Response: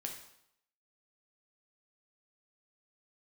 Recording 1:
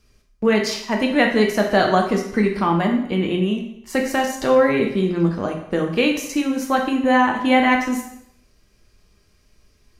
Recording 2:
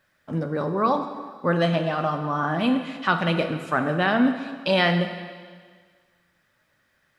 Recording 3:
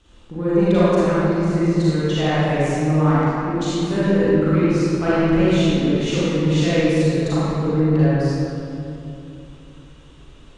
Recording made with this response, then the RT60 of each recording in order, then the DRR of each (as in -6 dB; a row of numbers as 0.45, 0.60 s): 1; 0.75, 1.7, 2.9 s; 1.5, 6.5, -11.0 dB